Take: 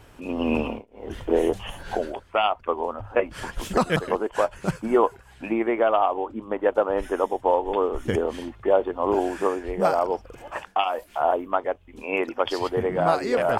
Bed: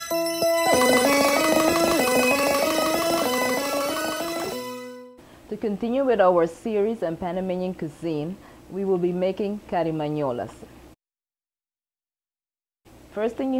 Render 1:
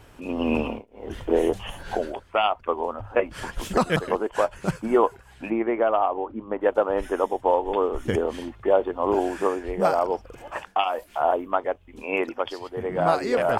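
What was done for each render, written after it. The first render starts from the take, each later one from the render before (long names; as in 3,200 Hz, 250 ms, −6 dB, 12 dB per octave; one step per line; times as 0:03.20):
0:05.50–0:06.61: high-frequency loss of the air 320 metres
0:12.26–0:13.04: duck −10.5 dB, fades 0.34 s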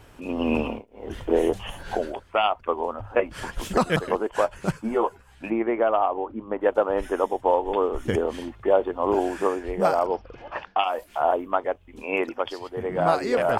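0:04.72–0:05.44: string-ensemble chorus
0:10.06–0:10.83: Butterworth low-pass 5,200 Hz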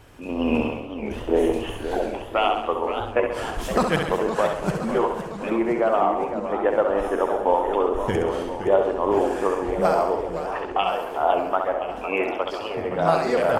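on a send: repeating echo 67 ms, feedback 54%, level −6 dB
on the sum: feedback echo with a swinging delay time 513 ms, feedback 65%, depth 205 cents, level −10 dB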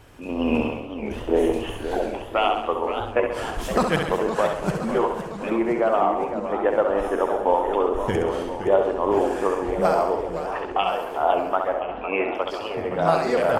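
0:11.80–0:12.35: low-pass filter 3,400 Hz 24 dB per octave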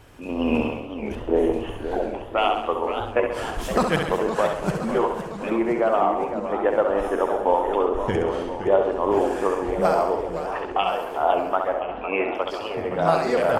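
0:01.15–0:02.38: high-shelf EQ 2,700 Hz −10 dB
0:07.85–0:08.92: high-shelf EQ 9,600 Hz −12 dB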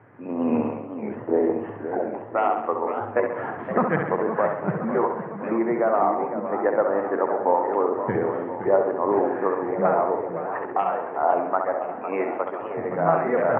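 Chebyshev band-pass filter 110–2,000 Hz, order 4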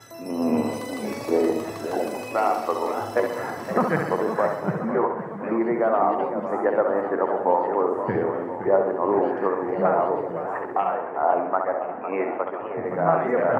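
mix in bed −16.5 dB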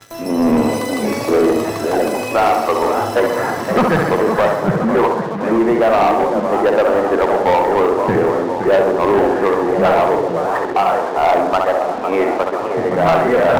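leveller curve on the samples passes 3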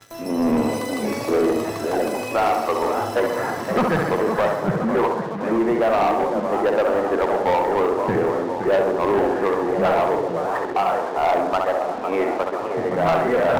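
level −5.5 dB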